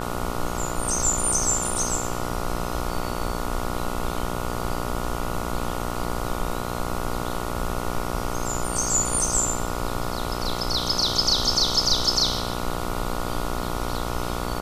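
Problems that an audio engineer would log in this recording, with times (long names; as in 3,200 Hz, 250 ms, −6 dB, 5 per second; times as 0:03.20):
mains buzz 60 Hz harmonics 24 −30 dBFS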